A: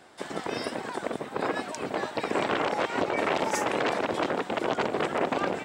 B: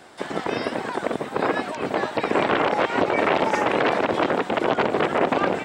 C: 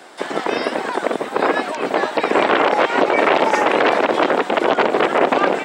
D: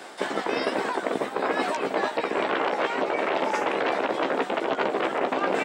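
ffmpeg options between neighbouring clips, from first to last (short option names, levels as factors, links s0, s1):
-filter_complex "[0:a]acrossover=split=4000[s0][s1];[s1]acompressor=threshold=0.002:ratio=4:attack=1:release=60[s2];[s0][s2]amix=inputs=2:normalize=0,volume=2.11"
-af "highpass=270,apsyclip=3.35,volume=0.596"
-filter_complex "[0:a]areverse,acompressor=threshold=0.0708:ratio=6,areverse,asplit=2[s0][s1];[s1]adelay=15,volume=0.447[s2];[s0][s2]amix=inputs=2:normalize=0"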